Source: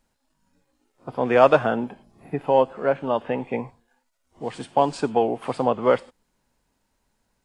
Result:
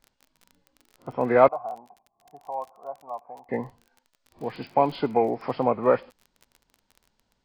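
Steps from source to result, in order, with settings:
hearing-aid frequency compression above 1,400 Hz 1.5 to 1
0:01.48–0:03.49: formant resonators in series a
surface crackle 26 per second −36 dBFS
level −1.5 dB

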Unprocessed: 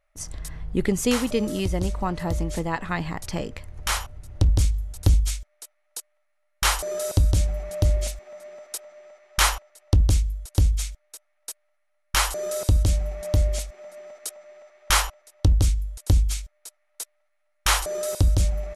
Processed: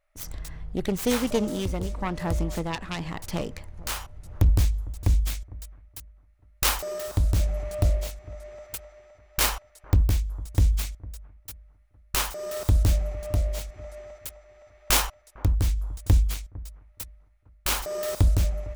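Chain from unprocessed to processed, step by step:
phase distortion by the signal itself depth 0.35 ms
shaped tremolo triangle 0.95 Hz, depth 45%
bucket-brigade delay 454 ms, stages 4,096, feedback 36%, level −20 dB

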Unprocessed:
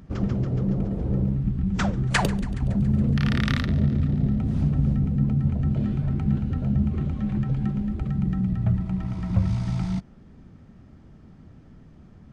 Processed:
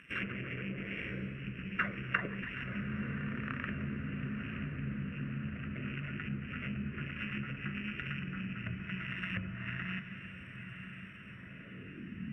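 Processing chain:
samples sorted by size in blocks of 16 samples
treble cut that deepens with the level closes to 610 Hz, closed at −18 dBFS
hum removal 77.09 Hz, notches 20
band-pass filter sweep 1,800 Hz → 210 Hz, 0:11.10–0:12.21
phaser with its sweep stopped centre 2,000 Hz, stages 4
feedback delay with all-pass diffusion 956 ms, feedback 70%, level −10 dB
level +12 dB

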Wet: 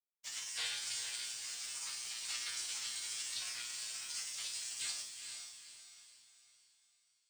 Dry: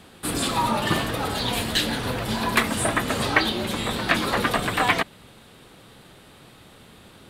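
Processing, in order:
high-pass filter 65 Hz 24 dB per octave
gate on every frequency bin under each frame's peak −25 dB weak
elliptic low-pass filter 8,700 Hz, stop band 40 dB
tilt shelving filter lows −7.5 dB, about 770 Hz
in parallel at −2 dB: brickwall limiter −27.5 dBFS, peak gain reduction 9 dB
on the sum: frequency shifter +56 Hz
tuned comb filter 120 Hz, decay 0.61 s, harmonics all, mix 90%
dead-zone distortion −57 dBFS
on a send: feedback delay with all-pass diffusion 451 ms, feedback 41%, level −6 dB
on the sum: level +3 dB

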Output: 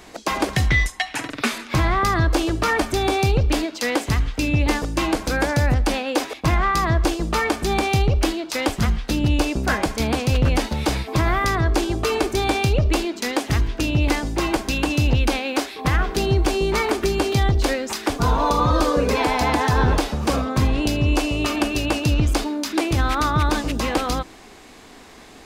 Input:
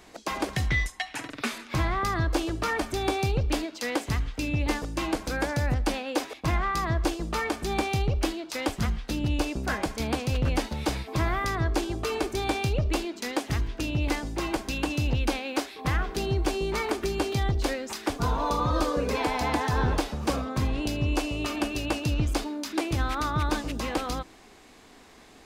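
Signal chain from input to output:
boost into a limiter +15.5 dB
level −7.5 dB

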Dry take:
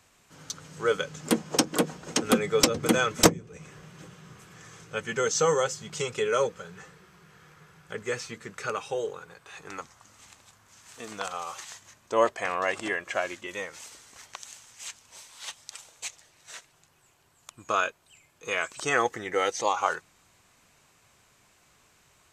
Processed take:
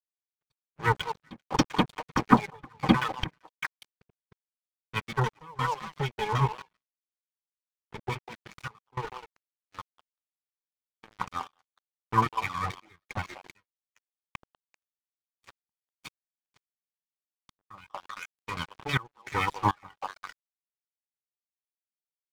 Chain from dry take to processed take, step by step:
lower of the sound and its delayed copy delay 0.88 ms
reverb reduction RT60 1.3 s
parametric band 130 Hz +10 dB 0.5 octaves
auto-filter low-pass saw down 6.3 Hz 590–7,900 Hz
high-frequency loss of the air 240 metres
notch comb filter 680 Hz
on a send: echo through a band-pass that steps 195 ms, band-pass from 700 Hz, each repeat 1.4 octaves, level −3 dB
on the sum: dead-zone distortion −41.5 dBFS
gate pattern "xxx..xxx..xxxx" 102 BPM −24 dB
downward expander −57 dBFS
level +4 dB

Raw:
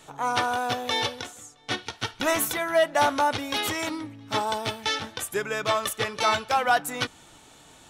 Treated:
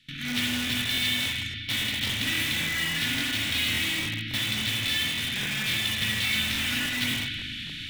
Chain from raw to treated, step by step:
compressor on every frequency bin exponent 0.6
inverse Chebyshev band-stop filter 490–990 Hz, stop band 60 dB
high shelf with overshoot 5,500 Hz −12 dB, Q 1.5
spring reverb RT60 1.4 s, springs 37/49 ms, chirp 45 ms, DRR −4 dB
in parallel at −4.5 dB: wrap-around overflow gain 22.5 dB
on the sum: noise gate with hold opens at −24 dBFS
regular buffer underruns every 0.28 s, samples 1,024, repeat, from 0:00.65
level −4.5 dB

